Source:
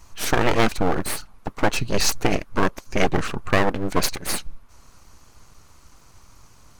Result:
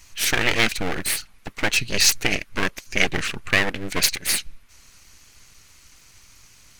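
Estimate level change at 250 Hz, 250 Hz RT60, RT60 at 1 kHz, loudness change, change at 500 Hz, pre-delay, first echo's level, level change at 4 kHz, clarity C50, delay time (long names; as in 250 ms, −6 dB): −5.5 dB, no reverb audible, no reverb audible, +2.0 dB, −6.0 dB, no reverb audible, no echo audible, +6.0 dB, no reverb audible, no echo audible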